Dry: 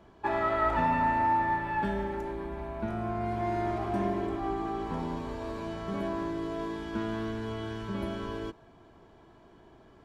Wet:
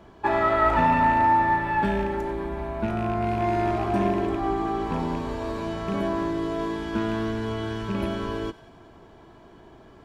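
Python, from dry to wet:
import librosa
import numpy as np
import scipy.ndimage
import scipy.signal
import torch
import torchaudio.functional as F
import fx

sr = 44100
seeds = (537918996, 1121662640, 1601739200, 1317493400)

y = fx.rattle_buzz(x, sr, strikes_db=-32.0, level_db=-36.0)
y = fx.echo_wet_highpass(y, sr, ms=92, feedback_pct=67, hz=2100.0, wet_db=-16.0)
y = F.gain(torch.from_numpy(y), 6.5).numpy()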